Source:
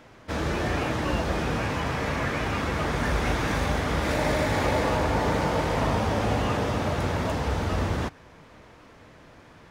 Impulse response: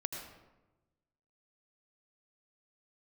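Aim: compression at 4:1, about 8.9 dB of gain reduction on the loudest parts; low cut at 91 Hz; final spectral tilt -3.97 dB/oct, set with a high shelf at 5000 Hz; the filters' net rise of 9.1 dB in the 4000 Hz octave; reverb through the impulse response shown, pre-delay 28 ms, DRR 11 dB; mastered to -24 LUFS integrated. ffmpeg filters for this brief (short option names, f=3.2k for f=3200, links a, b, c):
-filter_complex "[0:a]highpass=91,equalizer=f=4k:t=o:g=9,highshelf=f=5k:g=6,acompressor=threshold=-31dB:ratio=4,asplit=2[a][b];[1:a]atrim=start_sample=2205,adelay=28[c];[b][c]afir=irnorm=-1:irlink=0,volume=-12dB[d];[a][d]amix=inputs=2:normalize=0,volume=8.5dB"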